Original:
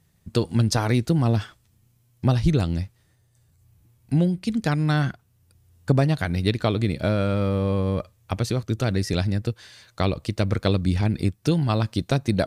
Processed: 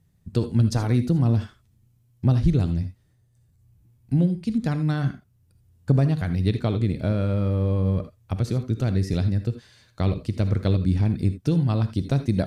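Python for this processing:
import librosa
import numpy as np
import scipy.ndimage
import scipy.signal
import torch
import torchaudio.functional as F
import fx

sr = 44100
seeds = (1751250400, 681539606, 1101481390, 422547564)

y = fx.low_shelf(x, sr, hz=390.0, db=10.5)
y = fx.rev_gated(y, sr, seeds[0], gate_ms=100, shape='rising', drr_db=9.5)
y = y * 10.0 ** (-8.5 / 20.0)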